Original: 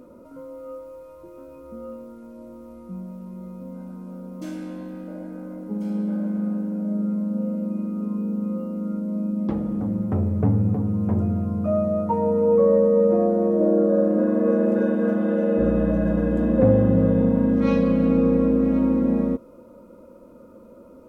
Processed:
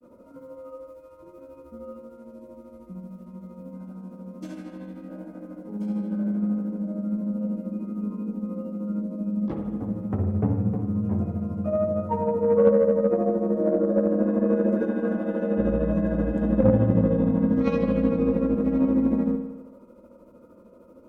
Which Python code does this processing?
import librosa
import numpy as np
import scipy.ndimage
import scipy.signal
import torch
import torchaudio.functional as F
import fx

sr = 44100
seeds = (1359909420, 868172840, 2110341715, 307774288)

y = fx.granulator(x, sr, seeds[0], grain_ms=119.0, per_s=13.0, spray_ms=10.0, spread_st=0)
y = fx.rev_spring(y, sr, rt60_s=1.0, pass_ms=(53,), chirp_ms=30, drr_db=6.0)
y = fx.cheby_harmonics(y, sr, harmonics=(3, 8), levels_db=(-22, -42), full_scale_db=-5.0)